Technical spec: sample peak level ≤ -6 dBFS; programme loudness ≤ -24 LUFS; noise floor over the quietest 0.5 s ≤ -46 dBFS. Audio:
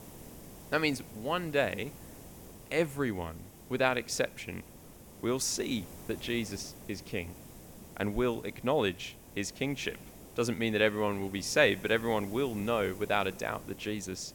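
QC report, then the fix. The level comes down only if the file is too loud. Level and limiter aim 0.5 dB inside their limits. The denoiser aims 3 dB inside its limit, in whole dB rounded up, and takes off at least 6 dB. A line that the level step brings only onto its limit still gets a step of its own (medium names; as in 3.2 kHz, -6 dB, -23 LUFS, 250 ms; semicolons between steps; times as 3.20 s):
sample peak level -11.5 dBFS: pass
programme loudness -32.5 LUFS: pass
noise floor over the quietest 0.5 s -52 dBFS: pass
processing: none needed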